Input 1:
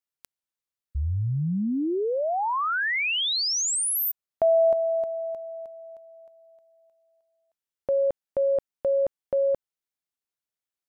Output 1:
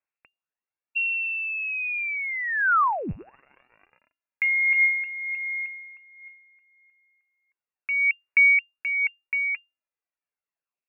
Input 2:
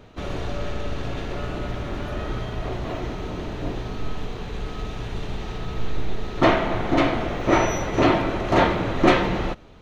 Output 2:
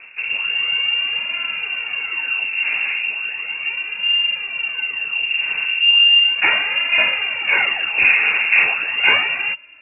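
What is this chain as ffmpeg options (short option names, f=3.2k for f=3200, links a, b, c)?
-af "aphaser=in_gain=1:out_gain=1:delay=2.8:decay=0.57:speed=0.36:type=sinusoidal,lowpass=f=2.4k:t=q:w=0.5098,lowpass=f=2.4k:t=q:w=0.6013,lowpass=f=2.4k:t=q:w=0.9,lowpass=f=2.4k:t=q:w=2.563,afreqshift=-2800"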